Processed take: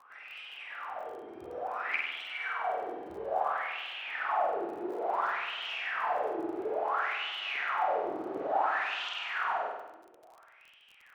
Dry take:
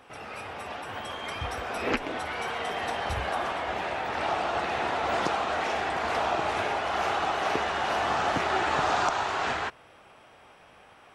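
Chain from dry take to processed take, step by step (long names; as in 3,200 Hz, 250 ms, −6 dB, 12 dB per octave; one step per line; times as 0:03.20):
LFO wah 0.58 Hz 330–3,100 Hz, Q 10
flutter between parallel walls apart 8.4 metres, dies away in 0.98 s
surface crackle 34 per second −51 dBFS
level +5.5 dB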